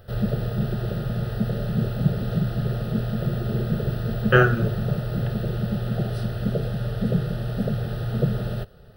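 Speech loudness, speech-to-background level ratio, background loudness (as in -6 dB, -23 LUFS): -20.5 LUFS, 6.0 dB, -26.5 LUFS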